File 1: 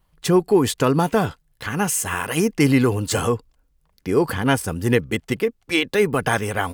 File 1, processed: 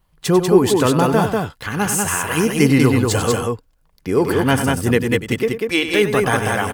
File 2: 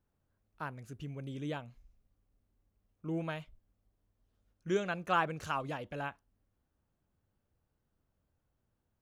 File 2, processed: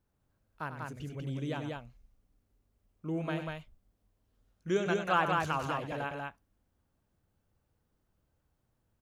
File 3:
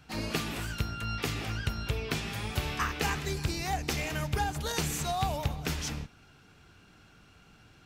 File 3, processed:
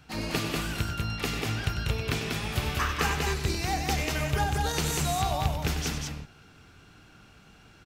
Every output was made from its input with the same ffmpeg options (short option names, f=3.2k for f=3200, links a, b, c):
-af "aecho=1:1:96.21|192.4:0.316|0.708,volume=1.5dB"